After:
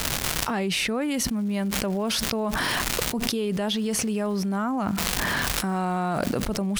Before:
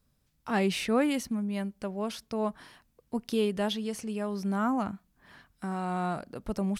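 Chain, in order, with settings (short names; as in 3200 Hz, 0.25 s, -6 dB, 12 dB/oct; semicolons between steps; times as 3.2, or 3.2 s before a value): crackle 420/s -47 dBFS; fast leveller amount 100%; gain -3 dB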